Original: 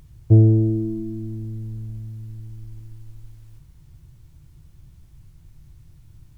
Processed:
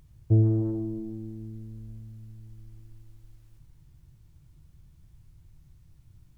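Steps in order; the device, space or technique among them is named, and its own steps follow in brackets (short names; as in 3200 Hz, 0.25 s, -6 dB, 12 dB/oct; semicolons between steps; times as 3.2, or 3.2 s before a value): saturated reverb return (on a send at -7.5 dB: reverb RT60 1.3 s, pre-delay 80 ms + soft clip -18 dBFS, distortion -6 dB); on the sum: gain -8 dB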